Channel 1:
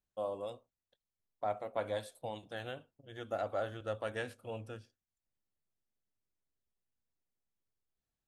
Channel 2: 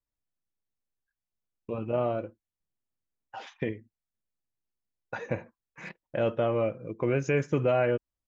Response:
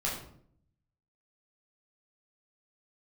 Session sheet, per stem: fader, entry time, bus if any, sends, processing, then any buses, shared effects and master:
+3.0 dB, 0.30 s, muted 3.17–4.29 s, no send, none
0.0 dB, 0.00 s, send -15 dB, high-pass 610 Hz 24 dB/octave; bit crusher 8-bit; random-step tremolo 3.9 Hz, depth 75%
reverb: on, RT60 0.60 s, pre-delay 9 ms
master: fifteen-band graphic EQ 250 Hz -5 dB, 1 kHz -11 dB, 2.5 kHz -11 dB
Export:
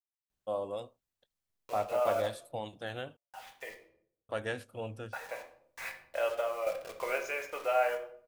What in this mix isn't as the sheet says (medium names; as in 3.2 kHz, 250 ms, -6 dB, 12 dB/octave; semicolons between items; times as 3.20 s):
stem 2: send -15 dB -> -6.5 dB; master: missing fifteen-band graphic EQ 250 Hz -5 dB, 1 kHz -11 dB, 2.5 kHz -11 dB